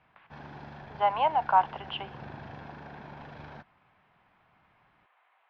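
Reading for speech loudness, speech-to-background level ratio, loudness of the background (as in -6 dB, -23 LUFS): -27.5 LUFS, 18.5 dB, -46.0 LUFS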